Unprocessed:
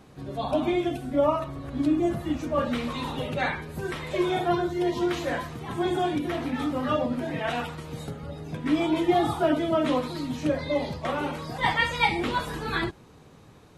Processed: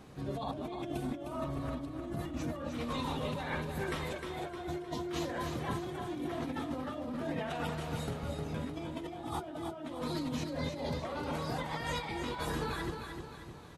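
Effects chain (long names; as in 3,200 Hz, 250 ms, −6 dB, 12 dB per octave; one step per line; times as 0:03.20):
dynamic equaliser 2,300 Hz, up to −4 dB, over −43 dBFS, Q 1.1
compressor whose output falls as the input rises −33 dBFS, ratio −1
on a send: repeating echo 307 ms, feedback 46%, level −6.5 dB
on the sum: level −6 dB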